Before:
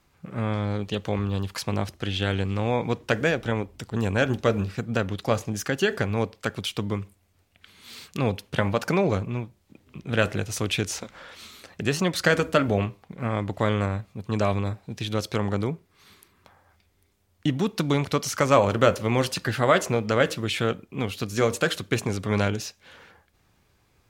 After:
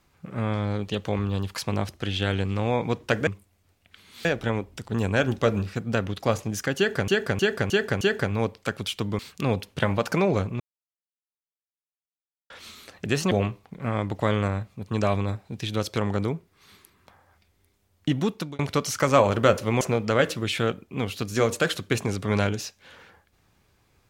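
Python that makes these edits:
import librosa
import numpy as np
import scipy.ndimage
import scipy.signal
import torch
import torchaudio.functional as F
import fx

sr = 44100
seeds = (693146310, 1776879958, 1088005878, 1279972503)

y = fx.edit(x, sr, fx.repeat(start_s=5.79, length_s=0.31, count=5),
    fx.move(start_s=6.97, length_s=0.98, to_s=3.27),
    fx.silence(start_s=9.36, length_s=1.9),
    fx.cut(start_s=12.07, length_s=0.62),
    fx.fade_out_span(start_s=17.64, length_s=0.33),
    fx.cut(start_s=19.19, length_s=0.63), tone=tone)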